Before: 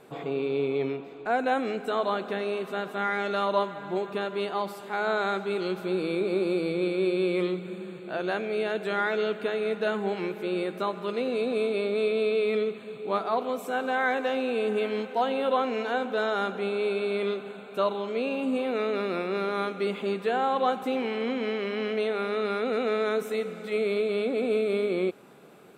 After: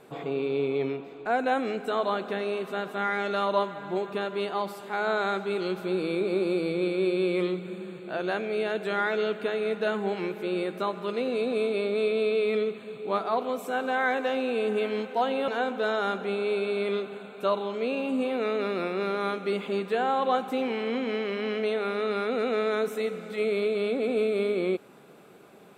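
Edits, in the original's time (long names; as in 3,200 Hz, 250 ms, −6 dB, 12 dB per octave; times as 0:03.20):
0:15.48–0:15.82: remove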